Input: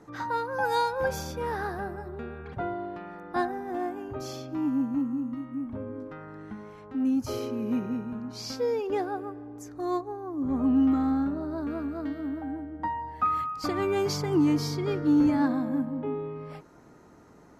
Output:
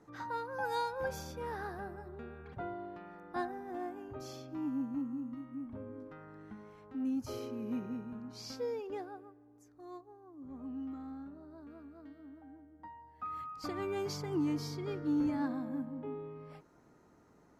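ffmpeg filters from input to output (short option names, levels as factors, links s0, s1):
-af "volume=1.06,afade=t=out:st=8.6:d=0.75:silence=0.298538,afade=t=in:st=13.14:d=0.45:silence=0.334965"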